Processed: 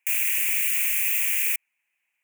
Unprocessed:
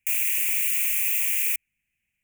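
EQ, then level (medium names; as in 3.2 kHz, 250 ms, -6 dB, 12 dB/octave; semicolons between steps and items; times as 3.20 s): high-pass 510 Hz 12 dB/octave; peaking EQ 1 kHz +13.5 dB 1.2 oct; 0.0 dB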